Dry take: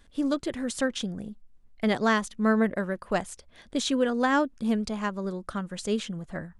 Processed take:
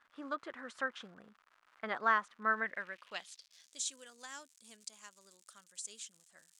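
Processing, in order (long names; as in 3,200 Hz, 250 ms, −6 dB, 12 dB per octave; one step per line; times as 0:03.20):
surface crackle 190 per second −39 dBFS
band-pass filter sweep 1,300 Hz → 7,700 Hz, 0:02.42–0:03.84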